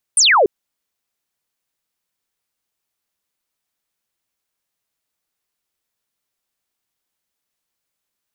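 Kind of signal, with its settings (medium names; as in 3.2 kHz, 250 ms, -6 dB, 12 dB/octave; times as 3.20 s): laser zap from 10 kHz, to 360 Hz, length 0.29 s sine, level -9 dB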